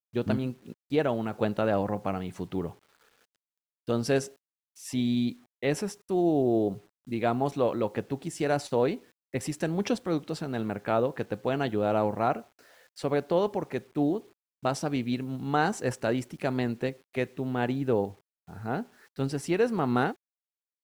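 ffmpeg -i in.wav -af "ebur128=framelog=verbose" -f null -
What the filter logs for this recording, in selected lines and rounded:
Integrated loudness:
  I:         -29.5 LUFS
  Threshold: -40.0 LUFS
Loudness range:
  LRA:         3.4 LU
  Threshold: -50.1 LUFS
  LRA low:   -31.8 LUFS
  LRA high:  -28.5 LUFS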